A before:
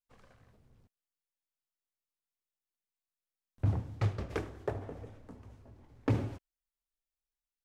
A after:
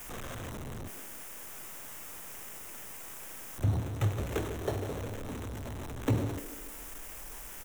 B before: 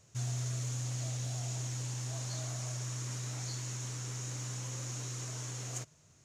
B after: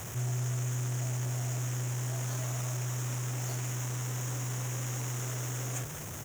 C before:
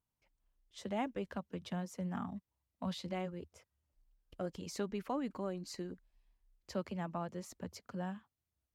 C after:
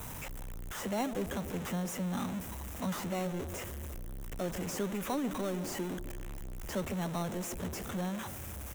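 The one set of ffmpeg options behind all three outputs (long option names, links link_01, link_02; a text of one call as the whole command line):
ffmpeg -i in.wav -filter_complex "[0:a]aeval=exprs='val(0)+0.5*0.0188*sgn(val(0))':channel_layout=same,acrossover=split=230|660|5400[link_01][link_02][link_03][link_04];[link_02]aecho=1:1:146|292|438|584|730|876|1022:0.447|0.255|0.145|0.0827|0.0472|0.0269|0.0153[link_05];[link_03]acrusher=samples=9:mix=1:aa=0.000001[link_06];[link_01][link_05][link_06][link_04]amix=inputs=4:normalize=0" out.wav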